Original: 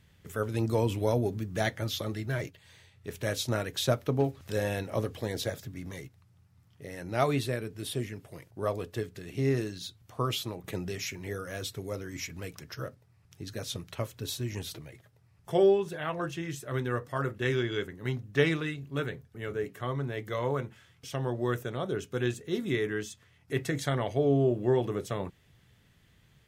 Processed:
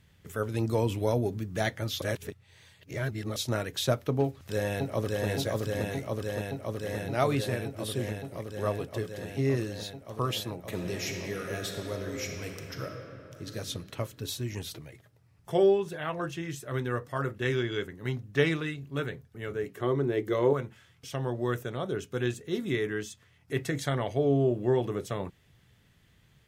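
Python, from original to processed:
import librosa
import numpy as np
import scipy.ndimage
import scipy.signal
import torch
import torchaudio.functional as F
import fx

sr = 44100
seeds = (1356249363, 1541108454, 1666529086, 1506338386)

y = fx.echo_throw(x, sr, start_s=4.23, length_s=1.04, ms=570, feedback_pct=85, wet_db=-1.5)
y = fx.reverb_throw(y, sr, start_s=10.61, length_s=2.94, rt60_s=3.0, drr_db=2.0)
y = fx.peak_eq(y, sr, hz=360.0, db=14.0, octaves=0.74, at=(19.77, 20.53))
y = fx.edit(y, sr, fx.reverse_span(start_s=2.02, length_s=1.34), tone=tone)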